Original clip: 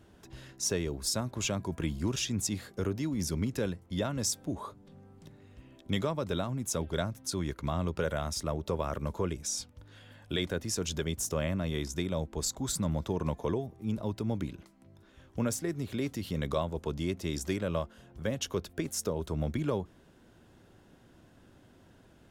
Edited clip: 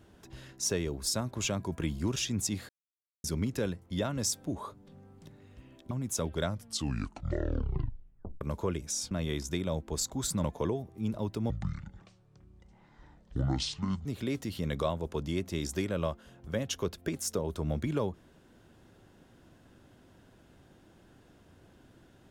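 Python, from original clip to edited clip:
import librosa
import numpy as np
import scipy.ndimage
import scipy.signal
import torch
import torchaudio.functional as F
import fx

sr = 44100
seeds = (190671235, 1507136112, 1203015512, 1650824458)

y = fx.edit(x, sr, fx.silence(start_s=2.69, length_s=0.55),
    fx.cut(start_s=5.91, length_s=0.56),
    fx.tape_stop(start_s=6.99, length_s=1.98),
    fx.cut(start_s=9.67, length_s=1.89),
    fx.cut(start_s=12.89, length_s=0.39),
    fx.speed_span(start_s=14.34, length_s=1.43, speed=0.56), tone=tone)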